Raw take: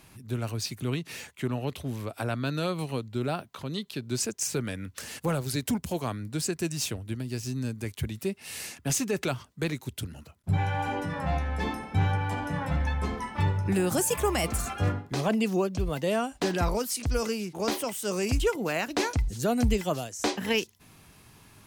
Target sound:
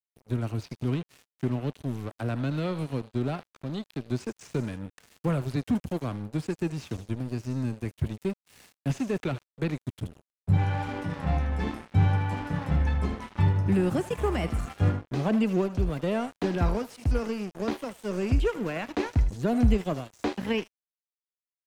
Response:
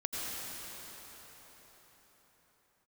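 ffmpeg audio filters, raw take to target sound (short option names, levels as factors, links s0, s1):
-filter_complex "[0:a]acrossover=split=340[s0][s1];[s0]acontrast=79[s2];[s1]aecho=1:1:77|154|231|308:0.224|0.0873|0.0341|0.0133[s3];[s2][s3]amix=inputs=2:normalize=0,aeval=exprs='sgn(val(0))*max(abs(val(0))-0.0178,0)':c=same,highshelf=f=11000:g=-6.5,acrossover=split=3400[s4][s5];[s5]acompressor=threshold=0.00398:ratio=4:attack=1:release=60[s6];[s4][s6]amix=inputs=2:normalize=0,volume=0.794"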